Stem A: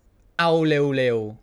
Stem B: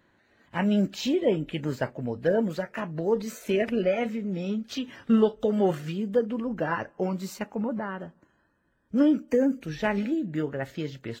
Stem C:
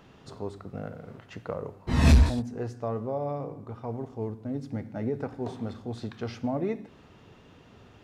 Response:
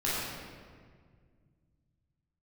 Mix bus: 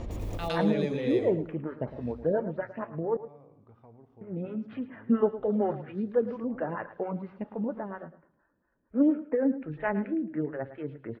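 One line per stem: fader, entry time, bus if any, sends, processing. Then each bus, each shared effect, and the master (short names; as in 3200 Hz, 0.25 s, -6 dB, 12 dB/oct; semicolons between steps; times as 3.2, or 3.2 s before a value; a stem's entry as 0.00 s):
-8.5 dB, 0.00 s, bus A, no send, echo send -6 dB, bell 1500 Hz -14.5 dB 0.46 oct; backwards sustainer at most 21 dB/s
-1.0 dB, 0.00 s, muted 3.17–4.21, no bus, no send, echo send -14 dB, inverse Chebyshev low-pass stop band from 8300 Hz, stop band 70 dB; photocell phaser 4.3 Hz
-15.0 dB, 0.00 s, bus A, no send, echo send -22.5 dB, compressor 5:1, threshold -35 dBFS, peak gain reduction 18 dB
bus A: 0.0 dB, LPF 3000 Hz 12 dB/oct; limiter -26.5 dBFS, peak gain reduction 10.5 dB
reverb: off
echo: feedback echo 0.109 s, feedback 20%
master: dry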